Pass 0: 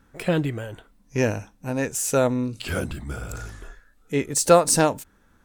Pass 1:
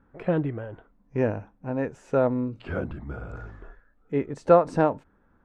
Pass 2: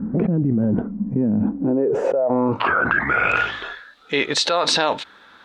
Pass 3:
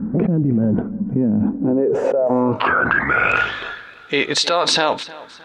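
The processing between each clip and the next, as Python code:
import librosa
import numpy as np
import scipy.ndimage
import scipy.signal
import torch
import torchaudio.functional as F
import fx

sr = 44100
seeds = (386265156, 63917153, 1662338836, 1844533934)

y1 = scipy.signal.sosfilt(scipy.signal.butter(2, 1300.0, 'lowpass', fs=sr, output='sos'), x)
y1 = fx.low_shelf(y1, sr, hz=170.0, db=-3.5)
y1 = F.gain(torch.from_numpy(y1), -1.0).numpy()
y2 = fx.filter_sweep_bandpass(y1, sr, from_hz=210.0, to_hz=3800.0, start_s=1.36, end_s=3.64, q=5.9)
y2 = fx.env_flatten(y2, sr, amount_pct=100)
y2 = F.gain(torch.from_numpy(y2), 5.5).numpy()
y3 = fx.echo_feedback(y2, sr, ms=310, feedback_pct=37, wet_db=-19.0)
y3 = F.gain(torch.from_numpy(y3), 2.0).numpy()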